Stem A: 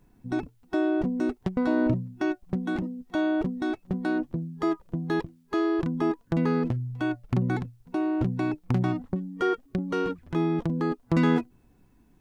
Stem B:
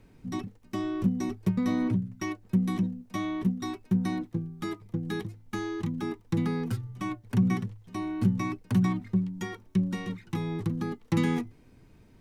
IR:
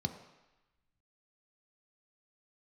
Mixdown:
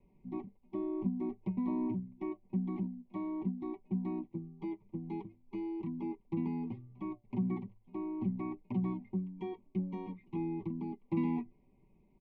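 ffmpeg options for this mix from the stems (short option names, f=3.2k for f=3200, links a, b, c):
-filter_complex "[0:a]asplit=3[a][b][c];[a]bandpass=f=300:t=q:w=8,volume=0dB[d];[b]bandpass=f=870:t=q:w=8,volume=-6dB[e];[c]bandpass=f=2.24k:t=q:w=8,volume=-9dB[f];[d][e][f]amix=inputs=3:normalize=0,volume=-5dB[g];[1:a]lowpass=f=2.3k:w=0.5412,lowpass=f=2.3k:w=1.3066,adelay=1,volume=-12.5dB[h];[g][h]amix=inputs=2:normalize=0,asuperstop=centerf=1500:order=12:qfactor=1.7,aecho=1:1:5.2:0.7"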